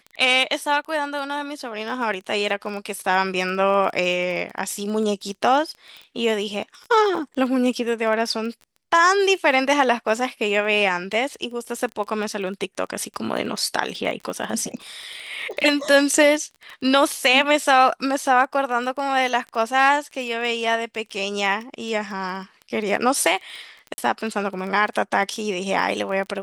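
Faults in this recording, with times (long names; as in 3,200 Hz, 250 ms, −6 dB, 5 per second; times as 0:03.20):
surface crackle 17 per second −29 dBFS
0:23.94–0:23.98: drop-out 40 ms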